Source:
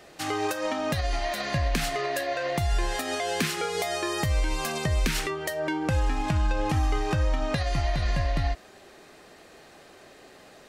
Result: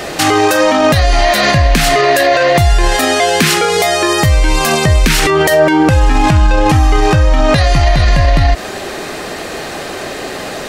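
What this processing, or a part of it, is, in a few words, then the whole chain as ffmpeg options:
loud club master: -af "acompressor=threshold=-27dB:ratio=2,asoftclip=type=hard:threshold=-19dB,alimiter=level_in=28.5dB:limit=-1dB:release=50:level=0:latency=1,volume=-1dB"

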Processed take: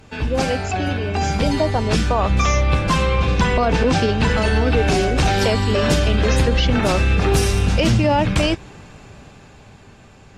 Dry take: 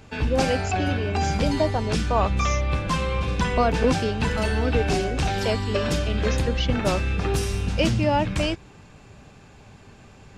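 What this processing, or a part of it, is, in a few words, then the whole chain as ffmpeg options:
low-bitrate web radio: -filter_complex "[0:a]asettb=1/sr,asplit=3[a][b][c];[a]atrim=end=3.054[d];[b]atrim=start=3.05:end=4.66,asetpts=PTS-STARTPTS,afade=t=in:d=0.004:c=qsin,afade=t=out:st=1.606:d=0.004:c=qsin,lowpass=7.7k[e];[c]atrim=start=4.656[f];[d][e]acrossfade=d=0.004:c1=hsin:c2=qsin[g];[g][f]acrossfade=d=0.004:c1=qsin:c2=hsin,dynaudnorm=f=320:g=11:m=11dB,alimiter=limit=-9.5dB:level=0:latency=1:release=37,volume=1.5dB" -ar 44100 -c:a aac -b:a 48k

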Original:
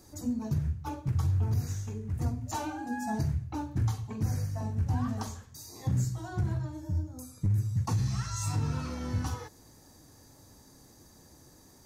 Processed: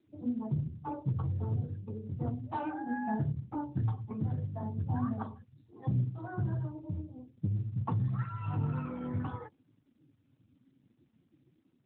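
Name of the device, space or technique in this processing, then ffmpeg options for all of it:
mobile call with aggressive noise cancelling: -filter_complex "[0:a]asettb=1/sr,asplit=3[a][b][c];[a]atrim=end=0.634[d];[b]atrim=start=0.63:end=2.33,asetpts=PTS-STARTPTS,afade=t=in:d=0.004:c=qsin,afade=t=out:st=1.696:d=0.004:c=qsin,adynamicequalizer=threshold=0.00112:dfrequency=510:dqfactor=3.8:tfrequency=510:tqfactor=3.8:attack=5:release=100:ratio=0.375:range=3:mode=boostabove:tftype=bell[e];[c]atrim=start=2.326[f];[d][e]acrossfade=d=0.004:c1=hsin:c2=qsin[g];[g][f]acrossfade=d=0.004:c1=qsin:c2=hsin,highpass=f=100:w=0.5412,highpass=f=100:w=1.3066,afftdn=nr=34:nf=-46" -ar 8000 -c:a libopencore_amrnb -b:a 12200

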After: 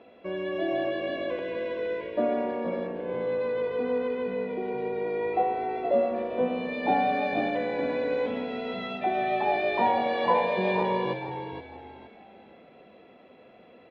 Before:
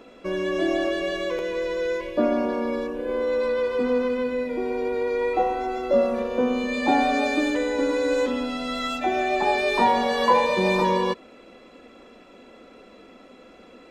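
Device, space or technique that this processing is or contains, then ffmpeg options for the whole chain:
frequency-shifting delay pedal into a guitar cabinet: -filter_complex "[0:a]asplit=5[a][b][c][d][e];[b]adelay=468,afreqshift=-54,volume=-9dB[f];[c]adelay=936,afreqshift=-108,volume=-18.9dB[g];[d]adelay=1404,afreqshift=-162,volume=-28.8dB[h];[e]adelay=1872,afreqshift=-216,volume=-38.7dB[i];[a][f][g][h][i]amix=inputs=5:normalize=0,highpass=86,equalizer=f=94:t=q:w=4:g=5,equalizer=f=280:t=q:w=4:g=-4,equalizer=f=690:t=q:w=4:g=6,equalizer=f=1.3k:t=q:w=4:g=-6,lowpass=f=3.4k:w=0.5412,lowpass=f=3.4k:w=1.3066,volume=-5.5dB"

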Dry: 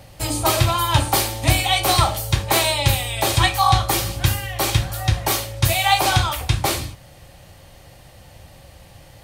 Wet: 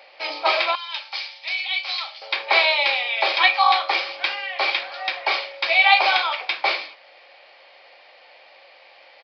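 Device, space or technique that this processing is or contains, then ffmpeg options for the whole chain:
musical greeting card: -filter_complex "[0:a]aresample=11025,aresample=44100,highpass=f=510:w=0.5412,highpass=f=510:w=1.3066,equalizer=f=2.3k:t=o:w=0.24:g=11,asettb=1/sr,asplit=3[a][b][c];[a]atrim=end=0.754[d];[b]atrim=start=0.75:end=2.22,asetpts=PTS-STARTPTS,afade=t=in:d=0.004:c=qsin,afade=t=out:st=1.466:d=0.004:c=qsin,aderivative[e];[c]atrim=start=2.216[f];[d][e]acrossfade=d=0.004:c1=hsin:c2=qsin[g];[g][f]acrossfade=d=0.004:c1=qsin:c2=hsin"

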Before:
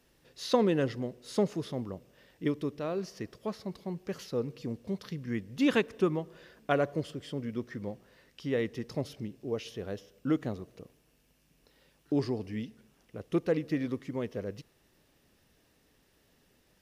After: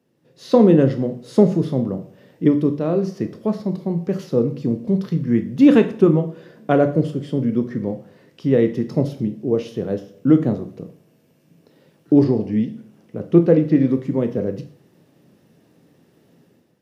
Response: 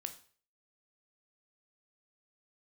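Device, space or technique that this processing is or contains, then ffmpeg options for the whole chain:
far laptop microphone: -filter_complex "[1:a]atrim=start_sample=2205[a];[0:a][a]afir=irnorm=-1:irlink=0,highpass=f=120:w=0.5412,highpass=f=120:w=1.3066,dynaudnorm=f=120:g=7:m=11.5dB,asettb=1/sr,asplit=3[b][c][d];[b]atrim=end=12.244[e];[c]atrim=start=12.24:end=13.91,asetpts=PTS-STARTPTS,afade=t=in:d=0.004:c=qsin,afade=t=out:st=1.666:d=0.004:c=qsin,acrossover=split=5600[f][g];[g]acompressor=threshold=-59dB:ratio=4:attack=1:release=60[h];[f][h]amix=inputs=2:normalize=0[i];[d]atrim=start=13.906[j];[e][i]acrossfade=d=0.004:c1=hsin:c2=qsin[k];[k][j]acrossfade=d=0.004:c1=qsin:c2=hsin,tiltshelf=f=760:g=8,volume=1dB"

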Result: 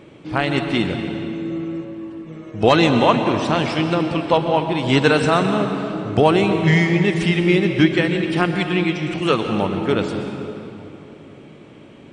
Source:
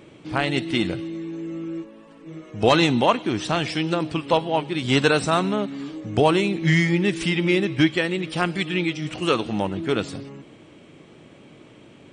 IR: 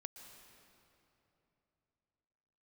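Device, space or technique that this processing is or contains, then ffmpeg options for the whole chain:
swimming-pool hall: -filter_complex "[1:a]atrim=start_sample=2205[a];[0:a][a]afir=irnorm=-1:irlink=0,highshelf=f=4.5k:g=-7.5,volume=9dB"

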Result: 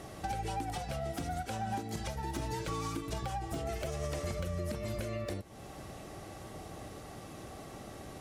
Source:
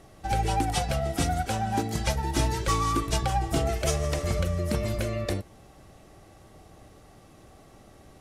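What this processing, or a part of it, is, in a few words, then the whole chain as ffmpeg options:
podcast mastering chain: -filter_complex "[0:a]asettb=1/sr,asplit=3[a][b][c];[a]atrim=end=2.504[d];[b]atrim=start=2.5:end=3.1,asetpts=PTS-STARTPTS,afade=t=in:d=0.004:c=qsin,afade=t=out:st=0.596:d=0.004:c=qsin,aecho=1:1:6.5:0.75,atrim=end_sample=26460[e];[c]atrim=start=3.096[f];[d][e]acrossfade=d=0.004:c1=hsin:c2=qsin[g];[g][f]acrossfade=d=0.004:c1=qsin:c2=hsin,highpass=f=77:p=1,deesser=0.75,acompressor=threshold=-39dB:ratio=3,alimiter=level_in=9dB:limit=-24dB:level=0:latency=1:release=485,volume=-9dB,volume=7dB" -ar 44100 -c:a libmp3lame -b:a 96k

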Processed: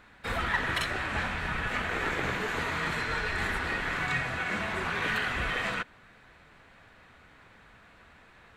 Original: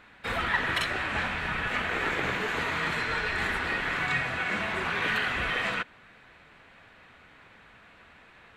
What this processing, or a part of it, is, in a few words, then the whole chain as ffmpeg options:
exciter from parts: -filter_complex "[0:a]asplit=2[a][b];[b]highpass=2.4k,asoftclip=type=tanh:threshold=-33dB,highpass=2.3k,volume=-6dB[c];[a][c]amix=inputs=2:normalize=0,lowshelf=f=100:g=6.5,volume=-1.5dB"

